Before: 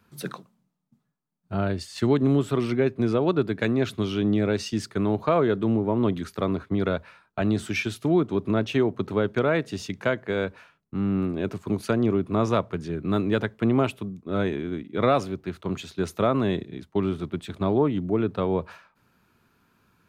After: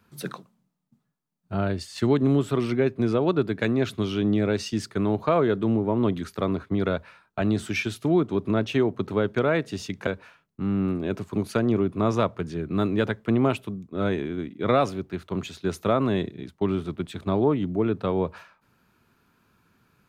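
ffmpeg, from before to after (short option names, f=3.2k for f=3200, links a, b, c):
-filter_complex "[0:a]asplit=2[a][b];[a]atrim=end=10.072[c];[b]atrim=start=10.408[d];[c][d]acrossfade=d=0.004:c1=hsin:c2=hsin"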